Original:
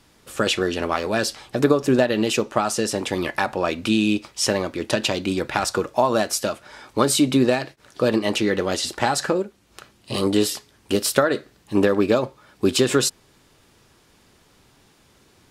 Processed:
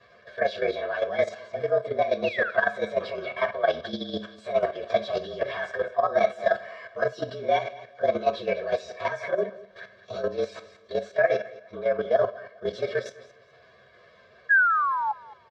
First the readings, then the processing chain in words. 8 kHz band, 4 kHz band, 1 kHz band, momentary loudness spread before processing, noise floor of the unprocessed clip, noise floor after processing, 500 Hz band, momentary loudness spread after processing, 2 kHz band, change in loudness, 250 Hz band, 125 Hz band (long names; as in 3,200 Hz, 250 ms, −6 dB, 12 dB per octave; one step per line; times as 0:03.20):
below −25 dB, −14.0 dB, −1.5 dB, 7 LU, −57 dBFS, −56 dBFS, −3.0 dB, 10 LU, +1.0 dB, −5.0 dB, −18.0 dB, −14.5 dB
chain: partials spread apart or drawn together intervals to 113%
dynamic equaliser 1,900 Hz, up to −5 dB, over −44 dBFS, Q 4.6
comb filter 1.8 ms, depth 94%
reversed playback
downward compressor 6 to 1, threshold −29 dBFS, peak gain reduction 17 dB
reversed playback
sound drawn into the spectrogram fall, 0:02.24–0:02.50, 1,300–2,900 Hz −34 dBFS
four-comb reverb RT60 0.36 s, combs from 30 ms, DRR 11 dB
sound drawn into the spectrogram fall, 0:14.49–0:15.13, 830–1,700 Hz −29 dBFS
repeating echo 206 ms, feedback 29%, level −17 dB
output level in coarse steps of 10 dB
loudspeaker in its box 170–3,800 Hz, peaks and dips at 170 Hz −8 dB, 320 Hz −6 dB, 670 Hz +9 dB, 950 Hz −5 dB, 1,600 Hz +7 dB, 2,800 Hz −5 dB
level +6.5 dB